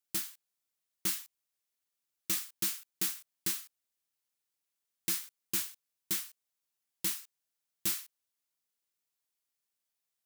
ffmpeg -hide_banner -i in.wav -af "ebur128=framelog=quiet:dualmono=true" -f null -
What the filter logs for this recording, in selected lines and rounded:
Integrated loudness:
  I:         -31.5 LUFS
  Threshold: -42.2 LUFS
Loudness range:
  LRA:         3.8 LU
  Threshold: -54.0 LUFS
  LRA low:   -36.4 LUFS
  LRA high:  -32.6 LUFS